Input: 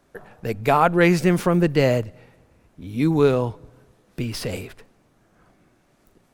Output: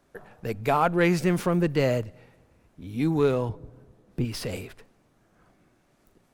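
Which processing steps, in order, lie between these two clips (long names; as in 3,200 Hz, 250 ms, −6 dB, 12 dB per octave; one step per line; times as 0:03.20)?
0:03.49–0:04.25: tilt shelving filter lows +6 dB, about 900 Hz
in parallel at −8.5 dB: soft clipping −20.5 dBFS, distortion −7 dB
on the sum: level −6.5 dB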